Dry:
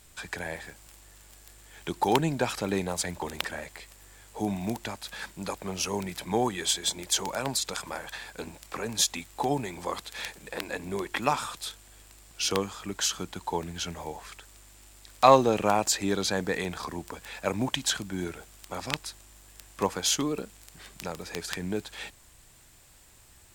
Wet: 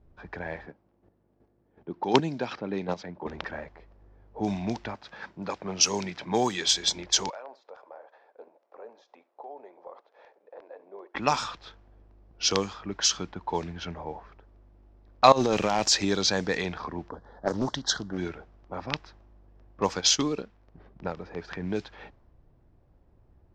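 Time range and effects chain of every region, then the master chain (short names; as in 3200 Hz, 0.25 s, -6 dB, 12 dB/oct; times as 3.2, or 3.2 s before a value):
0.66–3.27 chopper 2.7 Hz, depth 60%, duty 15% + BPF 210–6100 Hz + low shelf 320 Hz +11 dB
4.94–6.68 HPF 110 Hz + high shelf 4100 Hz +7 dB
7.3–11.15 ladder high-pass 450 Hz, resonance 40% + compressor, threshold -37 dBFS + echo 70 ms -19.5 dB
15.32–16.05 negative-ratio compressor -25 dBFS + overloaded stage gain 18 dB
17.09–18.18 Butterworth band-stop 2500 Hz, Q 1.4 + Doppler distortion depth 0.61 ms
19.97–21.17 high shelf 7600 Hz -7 dB + transient shaper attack +4 dB, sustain -5 dB
whole clip: low-pass opened by the level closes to 490 Hz, open at -22.5 dBFS; resonant high shelf 7700 Hz -12.5 dB, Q 3; gain +1 dB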